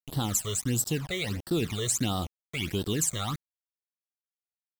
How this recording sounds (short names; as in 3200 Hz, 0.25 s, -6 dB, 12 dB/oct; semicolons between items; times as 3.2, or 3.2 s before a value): a quantiser's noise floor 6-bit, dither none; phasing stages 12, 1.5 Hz, lowest notch 260–2300 Hz; AAC